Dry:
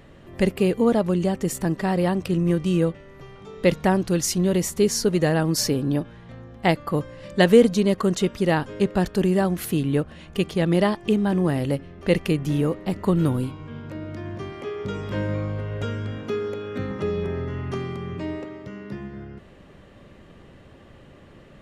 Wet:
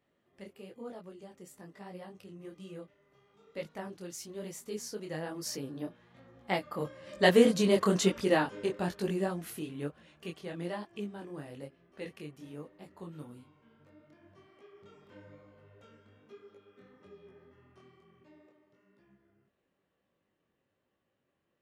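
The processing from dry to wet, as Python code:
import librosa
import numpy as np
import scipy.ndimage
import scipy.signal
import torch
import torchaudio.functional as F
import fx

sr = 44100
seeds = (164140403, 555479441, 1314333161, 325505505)

y = fx.doppler_pass(x, sr, speed_mps=8, closest_m=4.1, pass_at_s=7.83)
y = fx.highpass(y, sr, hz=270.0, slope=6)
y = fx.detune_double(y, sr, cents=38)
y = F.gain(torch.from_numpy(y), 2.5).numpy()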